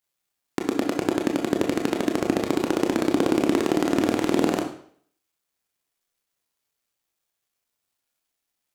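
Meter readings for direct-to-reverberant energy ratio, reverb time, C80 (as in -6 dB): 2.0 dB, 0.55 s, 11.0 dB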